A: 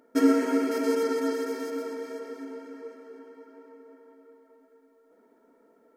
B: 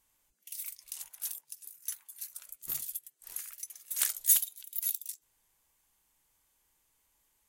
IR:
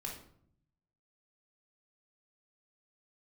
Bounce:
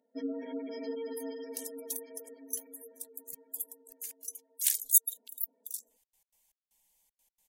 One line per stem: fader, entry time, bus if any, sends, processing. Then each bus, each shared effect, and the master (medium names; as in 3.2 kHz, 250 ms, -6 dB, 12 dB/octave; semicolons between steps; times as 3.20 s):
-13.0 dB, 0.00 s, no send, peaking EQ 3.5 kHz +8 dB 1.9 oct; level rider gain up to 4 dB
+2.0 dB, 0.65 s, no send, bass shelf 400 Hz -5.5 dB; trance gate "x.x.xx..xxx" 156 bpm -60 dB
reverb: none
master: spectral gate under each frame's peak -20 dB strong; static phaser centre 350 Hz, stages 6